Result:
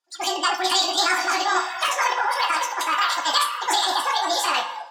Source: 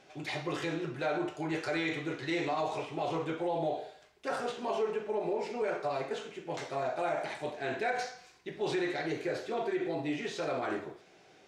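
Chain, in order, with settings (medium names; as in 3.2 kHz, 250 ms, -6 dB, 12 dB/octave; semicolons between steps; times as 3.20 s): tilt shelf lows -7 dB, about 1.4 kHz; echo that smears into a reverb 1384 ms, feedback 54%, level -9 dB; level rider gain up to 14 dB; spectral noise reduction 26 dB; formant shift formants -3 st; distance through air 180 m; spring tank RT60 1.6 s, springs 38/44/60 ms, chirp 50 ms, DRR 9 dB; speed mistake 33 rpm record played at 78 rpm; trim +1.5 dB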